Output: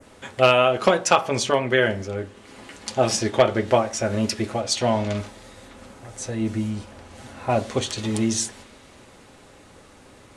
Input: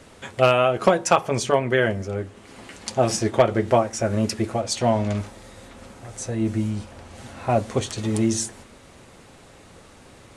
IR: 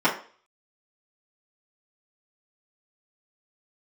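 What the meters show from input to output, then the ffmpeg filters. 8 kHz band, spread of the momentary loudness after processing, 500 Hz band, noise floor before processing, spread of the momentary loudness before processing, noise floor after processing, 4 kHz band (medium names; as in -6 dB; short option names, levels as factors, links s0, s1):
+1.5 dB, 16 LU, 0.0 dB, -49 dBFS, 18 LU, -50 dBFS, +4.0 dB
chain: -filter_complex "[0:a]adynamicequalizer=threshold=0.01:dfrequency=3700:dqfactor=0.74:tfrequency=3700:tqfactor=0.74:attack=5:release=100:ratio=0.375:range=3.5:mode=boostabove:tftype=bell,asplit=2[s0][s1];[1:a]atrim=start_sample=2205[s2];[s1][s2]afir=irnorm=-1:irlink=0,volume=0.0473[s3];[s0][s3]amix=inputs=2:normalize=0,volume=0.794"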